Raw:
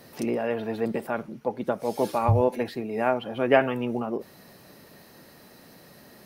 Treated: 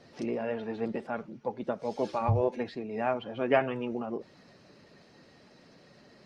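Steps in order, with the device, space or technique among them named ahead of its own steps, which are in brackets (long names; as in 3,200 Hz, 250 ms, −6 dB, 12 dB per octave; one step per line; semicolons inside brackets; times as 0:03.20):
clip after many re-uploads (low-pass filter 6,400 Hz 24 dB per octave; spectral magnitudes quantised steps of 15 dB)
level −5 dB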